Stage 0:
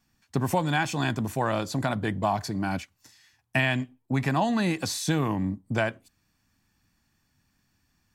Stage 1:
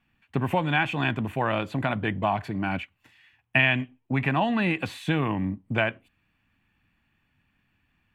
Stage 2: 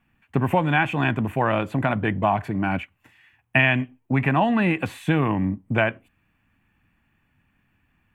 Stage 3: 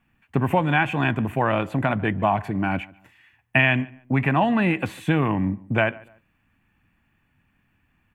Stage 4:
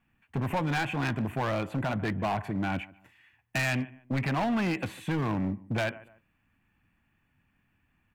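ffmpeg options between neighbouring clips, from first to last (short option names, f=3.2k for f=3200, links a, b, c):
-af "highshelf=f=3.9k:t=q:w=3:g=-12.5"
-af "equalizer=f=4.3k:w=1.2:g=-9.5,volume=4.5dB"
-filter_complex "[0:a]asplit=2[a][b];[b]adelay=146,lowpass=f=2.3k:p=1,volume=-22dB,asplit=2[c][d];[d]adelay=146,lowpass=f=2.3k:p=1,volume=0.3[e];[a][c][e]amix=inputs=3:normalize=0"
-af "asoftclip=type=hard:threshold=-19.5dB,volume=-5dB"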